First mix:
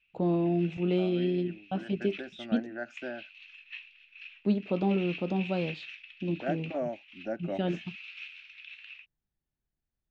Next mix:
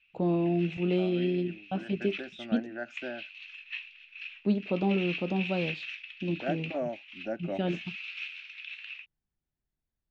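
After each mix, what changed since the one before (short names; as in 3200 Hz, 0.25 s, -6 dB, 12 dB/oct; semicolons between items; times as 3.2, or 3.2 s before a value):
background +5.0 dB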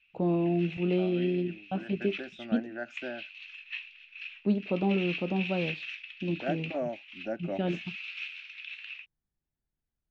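first voice: add high shelf 5000 Hz -10.5 dB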